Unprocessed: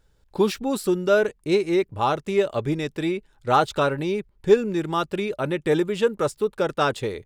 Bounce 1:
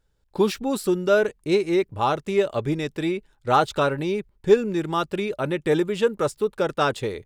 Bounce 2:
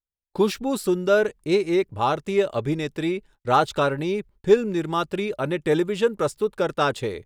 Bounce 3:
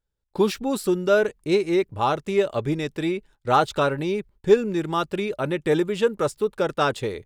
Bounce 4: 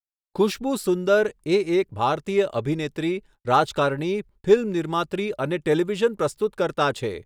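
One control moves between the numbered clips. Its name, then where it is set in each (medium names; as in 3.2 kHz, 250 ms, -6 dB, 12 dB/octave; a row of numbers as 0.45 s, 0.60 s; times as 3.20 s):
gate, range: -7 dB, -37 dB, -20 dB, -58 dB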